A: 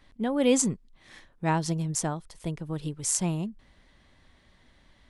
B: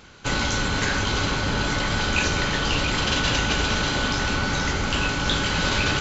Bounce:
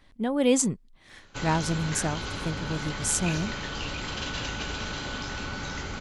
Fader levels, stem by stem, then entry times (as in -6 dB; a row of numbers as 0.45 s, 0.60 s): +0.5 dB, -10.5 dB; 0.00 s, 1.10 s